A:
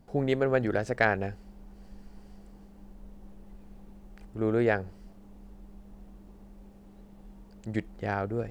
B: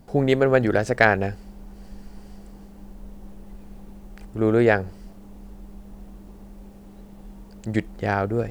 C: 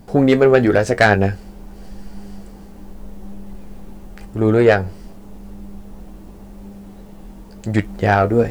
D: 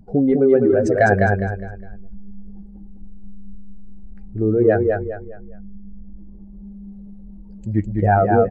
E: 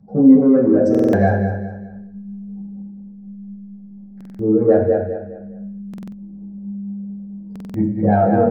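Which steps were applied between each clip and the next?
treble shelf 5.9 kHz +4.5 dB; trim +7.5 dB
in parallel at -3 dB: gain riding 0.5 s; on the sum: saturation -5.5 dBFS, distortion -17 dB; flange 0.89 Hz, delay 9.8 ms, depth 3.1 ms, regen +53%; trim +7 dB
spectral contrast enhancement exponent 1.9; gain riding 0.5 s; feedback delay 205 ms, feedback 33%, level -3.5 dB; trim -1.5 dB
saturation -5 dBFS, distortion -23 dB; reverberation RT60 0.50 s, pre-delay 3 ms, DRR -7 dB; buffer glitch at 0.90/4.16/5.89/7.51 s, samples 2048, times 4; trim -15.5 dB

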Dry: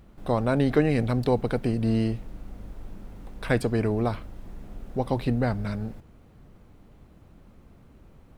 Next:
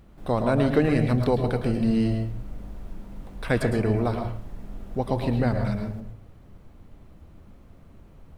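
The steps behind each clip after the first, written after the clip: reverberation RT60 0.50 s, pre-delay 106 ms, DRR 5 dB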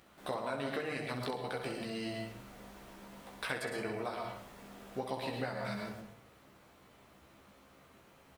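high-pass 1.2 kHz 6 dB/octave; compression 5:1, threshold -39 dBFS, peak gain reduction 13.5 dB; on a send: early reflections 15 ms -4 dB, 64 ms -7.5 dB; on the sum: trim +2.5 dB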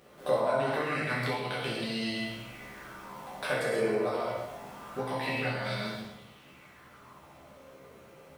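plate-style reverb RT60 0.77 s, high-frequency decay 0.95×, DRR -2.5 dB; sweeping bell 0.25 Hz 460–3700 Hz +11 dB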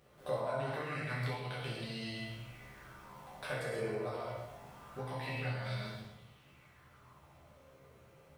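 resonant low shelf 160 Hz +7 dB, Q 1.5; trim -8.5 dB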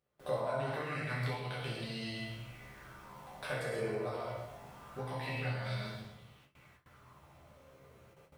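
gate with hold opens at -51 dBFS; trim +1 dB

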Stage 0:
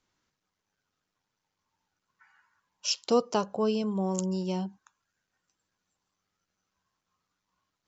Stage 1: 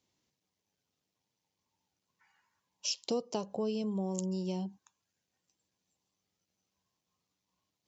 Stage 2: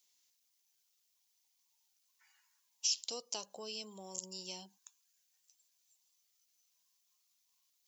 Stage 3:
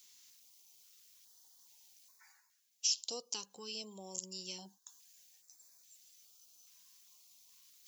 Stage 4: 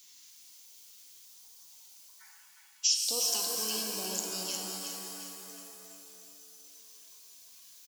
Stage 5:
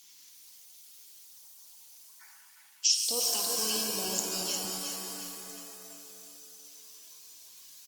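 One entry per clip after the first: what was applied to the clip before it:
high-pass 73 Hz; peaking EQ 1.4 kHz -13.5 dB 0.82 oct; compression 2.5:1, threshold -33 dBFS, peak gain reduction 9.5 dB
differentiator; peak limiter -32 dBFS, peak gain reduction 11.5 dB; trim +10.5 dB
reverse; upward compressor, threshold -51 dBFS; reverse; step-sequenced notch 2.4 Hz 630–3000 Hz; trim +1 dB
on a send: feedback delay 359 ms, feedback 44%, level -6 dB; on the sum: pitch-shifted reverb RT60 2.3 s, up +7 st, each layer -2 dB, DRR 2.5 dB; trim +5 dB
trim +3 dB; Opus 24 kbps 48 kHz

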